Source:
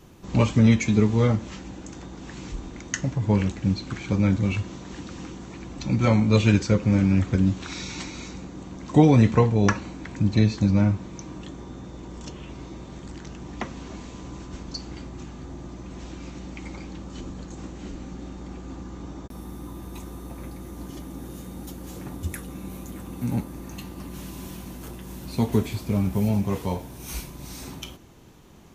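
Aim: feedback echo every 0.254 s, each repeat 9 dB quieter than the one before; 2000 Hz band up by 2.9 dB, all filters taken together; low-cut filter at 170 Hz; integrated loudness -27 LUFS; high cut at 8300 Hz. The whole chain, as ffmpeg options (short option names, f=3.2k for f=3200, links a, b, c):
-af "highpass=170,lowpass=8.3k,equalizer=f=2k:t=o:g=3.5,aecho=1:1:254|508|762|1016:0.355|0.124|0.0435|0.0152,volume=-1.5dB"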